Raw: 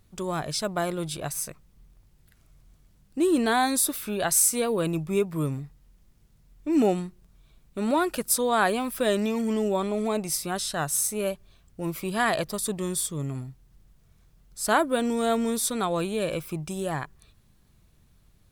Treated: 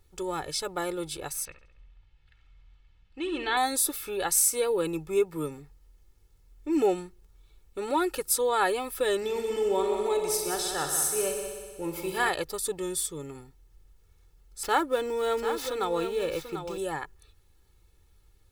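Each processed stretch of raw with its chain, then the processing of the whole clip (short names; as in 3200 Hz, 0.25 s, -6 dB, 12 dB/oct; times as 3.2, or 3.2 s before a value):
1.45–3.57 synth low-pass 3000 Hz, resonance Q 1.9 + bell 390 Hz -10.5 dB 1.1 oct + feedback echo 68 ms, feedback 54%, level -11.5 dB
9.17–12.29 doubler 42 ms -13.5 dB + multi-head echo 61 ms, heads all three, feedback 58%, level -11 dB
14.63–16.78 median filter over 5 samples + echo 0.741 s -9 dB
whole clip: bell 130 Hz -14 dB 0.34 oct; comb 2.3 ms, depth 81%; gain -4 dB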